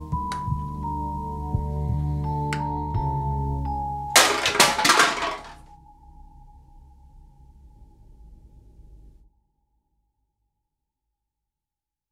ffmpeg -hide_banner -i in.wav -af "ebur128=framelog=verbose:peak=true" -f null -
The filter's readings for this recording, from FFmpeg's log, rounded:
Integrated loudness:
  I:         -22.6 LUFS
  Threshold: -35.0 LUFS
Loudness range:
  LRA:         7.6 LU
  Threshold: -45.2 LUFS
  LRA low:   -28.3 LUFS
  LRA high:  -20.6 LUFS
True peak:
  Peak:       -2.5 dBFS